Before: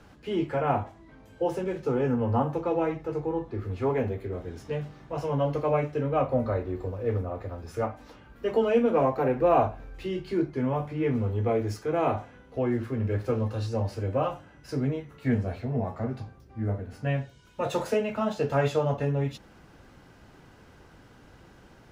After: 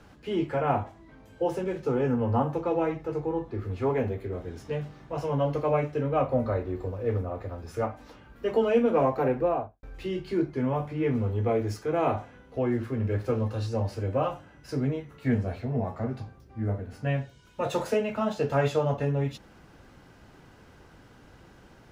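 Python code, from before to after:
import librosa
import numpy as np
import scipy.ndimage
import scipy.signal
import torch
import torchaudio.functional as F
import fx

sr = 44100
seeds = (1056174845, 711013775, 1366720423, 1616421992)

y = fx.studio_fade_out(x, sr, start_s=9.25, length_s=0.58)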